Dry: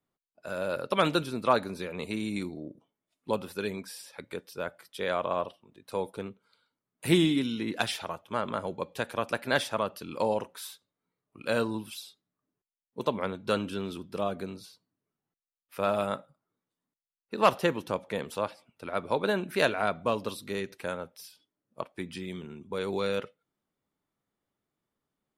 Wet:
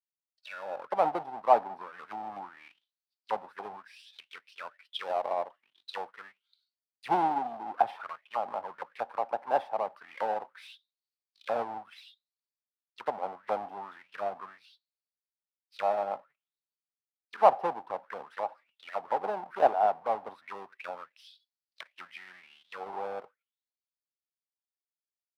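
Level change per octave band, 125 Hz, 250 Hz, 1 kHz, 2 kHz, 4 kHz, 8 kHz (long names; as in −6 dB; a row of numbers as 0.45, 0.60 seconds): −19.0 dB, −14.5 dB, +4.0 dB, −8.5 dB, −11.5 dB, below −15 dB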